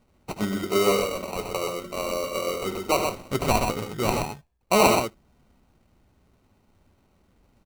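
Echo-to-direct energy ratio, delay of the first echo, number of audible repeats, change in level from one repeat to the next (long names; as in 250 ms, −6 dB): −4.0 dB, 76 ms, 2, repeats not evenly spaced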